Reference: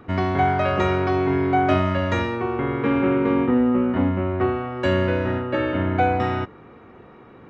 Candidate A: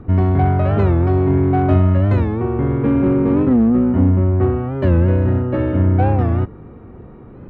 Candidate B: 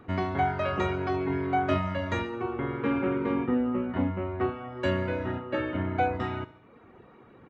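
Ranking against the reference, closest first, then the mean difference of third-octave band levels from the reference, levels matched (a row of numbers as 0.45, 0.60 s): B, A; 1.5, 6.0 dB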